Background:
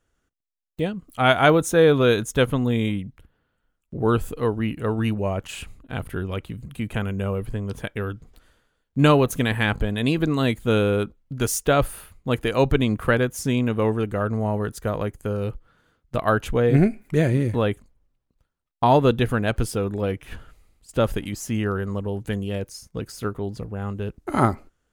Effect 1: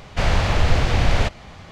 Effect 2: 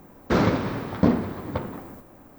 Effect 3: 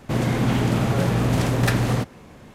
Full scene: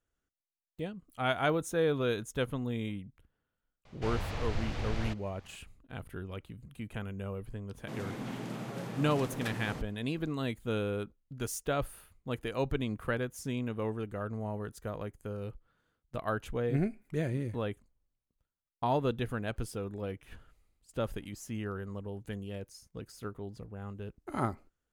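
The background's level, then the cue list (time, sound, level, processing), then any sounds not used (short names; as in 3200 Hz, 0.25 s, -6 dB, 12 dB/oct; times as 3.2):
background -13 dB
3.85 add 1 -17.5 dB
7.78 add 3 -17 dB + HPF 140 Hz 24 dB/oct
not used: 2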